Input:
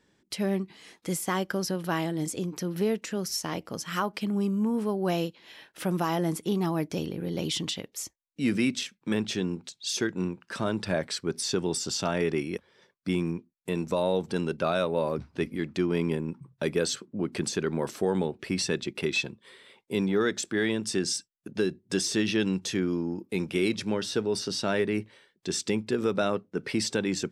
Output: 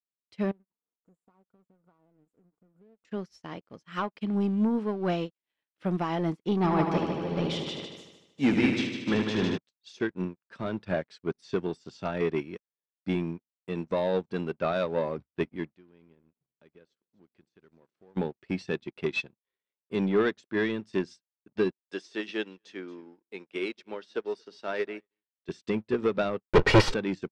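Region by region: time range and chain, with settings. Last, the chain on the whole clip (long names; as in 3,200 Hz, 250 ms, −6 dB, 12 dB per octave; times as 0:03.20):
0:00.51–0:03.05: comb filter 4.3 ms, depth 31% + downward compressor 4 to 1, threshold −41 dBFS + linear-phase brick-wall band-stop 1,500–6,600 Hz
0:06.57–0:09.58: parametric band 1,000 Hz +5.5 dB 1.8 octaves + echo machine with several playback heads 76 ms, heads first and second, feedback 73%, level −7 dB
0:15.71–0:18.17: downward compressor 2 to 1, threshold −48 dBFS + echo machine with several playback heads 124 ms, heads first and second, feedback 55%, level −22 dB
0:21.71–0:25.49: high-pass filter 400 Hz + single-tap delay 229 ms −20 dB
0:26.45–0:26.94: lower of the sound and its delayed copy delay 2.1 ms + leveller curve on the samples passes 5
whole clip: leveller curve on the samples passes 2; low-pass filter 3,600 Hz 12 dB per octave; expander for the loud parts 2.5 to 1, over −43 dBFS; level +1 dB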